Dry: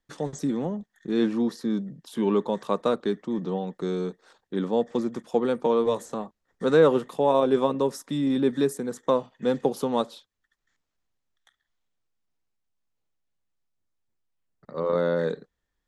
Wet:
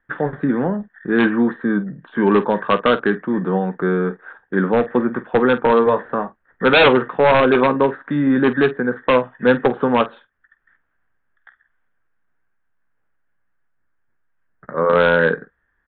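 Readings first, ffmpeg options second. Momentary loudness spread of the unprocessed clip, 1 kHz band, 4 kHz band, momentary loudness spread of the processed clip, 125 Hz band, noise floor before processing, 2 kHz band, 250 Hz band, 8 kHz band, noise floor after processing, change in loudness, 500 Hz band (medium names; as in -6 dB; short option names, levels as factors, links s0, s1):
11 LU, +11.0 dB, +12.0 dB, 10 LU, +8.5 dB, -81 dBFS, +19.5 dB, +8.0 dB, under -35 dB, -68 dBFS, +8.5 dB, +7.5 dB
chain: -af "lowpass=f=1600:t=q:w=6,aresample=8000,aeval=exprs='0.2*(abs(mod(val(0)/0.2+3,4)-2)-1)':c=same,aresample=44100,aecho=1:1:16|48:0.237|0.178,volume=2.51"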